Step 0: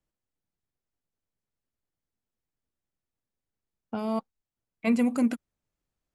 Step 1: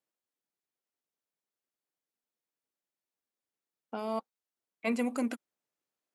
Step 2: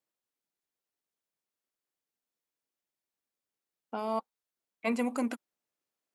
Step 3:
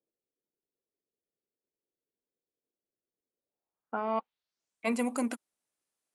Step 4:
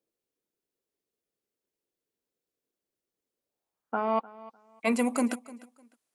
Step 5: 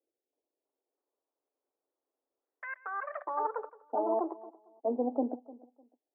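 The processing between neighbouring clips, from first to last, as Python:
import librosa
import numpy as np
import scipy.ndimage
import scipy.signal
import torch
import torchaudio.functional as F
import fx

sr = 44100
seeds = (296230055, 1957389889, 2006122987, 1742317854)

y1 = scipy.signal.sosfilt(scipy.signal.butter(2, 320.0, 'highpass', fs=sr, output='sos'), x)
y1 = y1 * 10.0 ** (-2.0 / 20.0)
y2 = fx.dynamic_eq(y1, sr, hz=950.0, q=2.1, threshold_db=-49.0, ratio=4.0, max_db=5)
y3 = fx.filter_sweep_lowpass(y2, sr, from_hz=440.0, to_hz=10000.0, start_s=3.36, end_s=4.85, q=2.5)
y4 = fx.echo_feedback(y3, sr, ms=302, feedback_pct=23, wet_db=-19.5)
y4 = y4 * 10.0 ** (4.0 / 20.0)
y5 = scipy.signal.sosfilt(scipy.signal.cheby1(4, 1.0, [260.0, 840.0], 'bandpass', fs=sr, output='sos'), y4)
y5 = fx.echo_pitch(y5, sr, ms=325, semitones=5, count=3, db_per_echo=-3.0)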